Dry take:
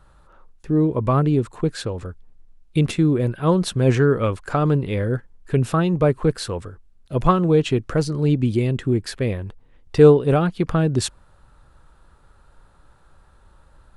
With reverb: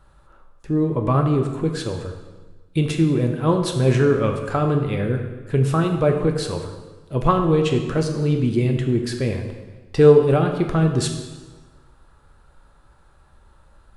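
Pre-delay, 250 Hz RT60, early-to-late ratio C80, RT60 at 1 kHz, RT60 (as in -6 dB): 3 ms, 1.4 s, 8.0 dB, 1.3 s, 1.3 s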